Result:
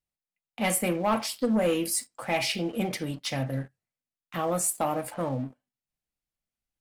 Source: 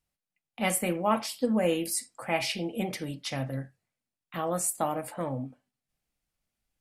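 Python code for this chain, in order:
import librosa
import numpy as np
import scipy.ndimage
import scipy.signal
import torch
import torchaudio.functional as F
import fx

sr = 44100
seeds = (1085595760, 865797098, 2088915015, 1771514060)

y = fx.leveller(x, sr, passes=2)
y = y * 10.0 ** (-4.5 / 20.0)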